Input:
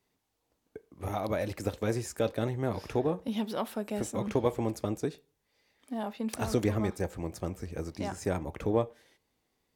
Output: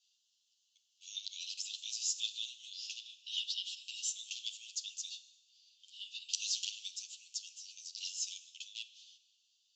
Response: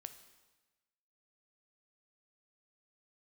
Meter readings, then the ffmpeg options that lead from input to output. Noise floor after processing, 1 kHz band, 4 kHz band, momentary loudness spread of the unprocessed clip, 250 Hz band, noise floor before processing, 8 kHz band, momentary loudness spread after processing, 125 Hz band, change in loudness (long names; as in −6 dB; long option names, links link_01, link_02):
−78 dBFS, below −40 dB, +10.5 dB, 9 LU, below −40 dB, −79 dBFS, +7.5 dB, 12 LU, below −40 dB, −7.0 dB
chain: -filter_complex "[0:a]aeval=exprs='0.141*(abs(mod(val(0)/0.141+3,4)-2)-1)':channel_layout=same,asuperpass=centerf=4600:order=20:qfactor=1,asplit=2[link_01][link_02];[1:a]atrim=start_sample=2205,adelay=10[link_03];[link_02][link_03]afir=irnorm=-1:irlink=0,volume=5.5dB[link_04];[link_01][link_04]amix=inputs=2:normalize=0,volume=7dB"